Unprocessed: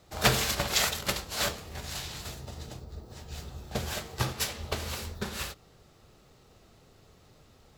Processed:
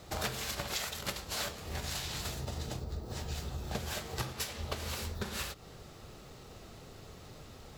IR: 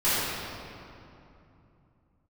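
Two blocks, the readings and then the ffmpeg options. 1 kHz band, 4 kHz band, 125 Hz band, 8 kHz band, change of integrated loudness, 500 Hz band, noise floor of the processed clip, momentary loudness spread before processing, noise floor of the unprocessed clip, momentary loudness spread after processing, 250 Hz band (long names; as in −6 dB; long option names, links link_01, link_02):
−6.5 dB, −6.5 dB, −3.5 dB, −6.5 dB, −6.5 dB, −6.0 dB, −52 dBFS, 17 LU, −59 dBFS, 16 LU, −4.5 dB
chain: -af "acompressor=threshold=-42dB:ratio=8,volume=7.5dB"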